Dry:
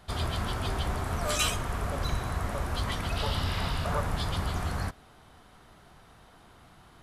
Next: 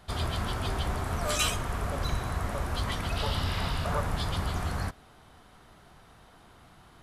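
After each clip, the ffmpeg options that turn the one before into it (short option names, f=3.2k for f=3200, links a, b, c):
-af anull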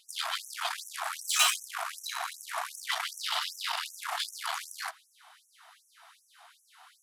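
-af "aeval=exprs='0.2*(cos(1*acos(clip(val(0)/0.2,-1,1)))-cos(1*PI/2))+0.0178*(cos(8*acos(clip(val(0)/0.2,-1,1)))-cos(8*PI/2))':c=same,afftfilt=real='re*gte(b*sr/1024,610*pow(5700/610,0.5+0.5*sin(2*PI*2.6*pts/sr)))':imag='im*gte(b*sr/1024,610*pow(5700/610,0.5+0.5*sin(2*PI*2.6*pts/sr)))':win_size=1024:overlap=0.75,volume=4dB"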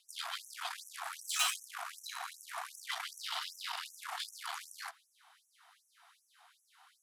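-af "afreqshift=20,volume=-7.5dB"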